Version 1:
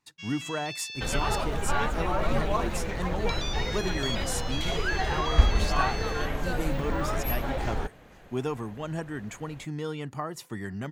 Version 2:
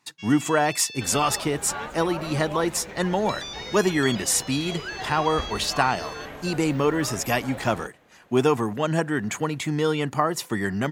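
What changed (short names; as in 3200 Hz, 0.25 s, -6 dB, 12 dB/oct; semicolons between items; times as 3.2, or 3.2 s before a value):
speech +12.0 dB; second sound -4.5 dB; master: add HPF 200 Hz 6 dB/oct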